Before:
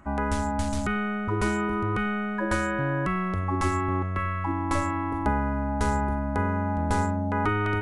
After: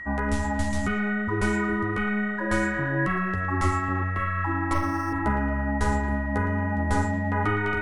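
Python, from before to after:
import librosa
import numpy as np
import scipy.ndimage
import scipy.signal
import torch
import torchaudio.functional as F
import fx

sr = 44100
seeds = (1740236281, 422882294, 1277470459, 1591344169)

y = fx.echo_banded(x, sr, ms=113, feedback_pct=71, hz=1700.0, wet_db=-8.0)
y = fx.chorus_voices(y, sr, voices=4, hz=1.2, base_ms=12, depth_ms=3.0, mix_pct=35)
y = y + 10.0 ** (-37.0 / 20.0) * np.sin(2.0 * np.pi * 1900.0 * np.arange(len(y)) / sr)
y = fx.resample_linear(y, sr, factor=6, at=(4.73, 5.13))
y = F.gain(torch.from_numpy(y), 2.0).numpy()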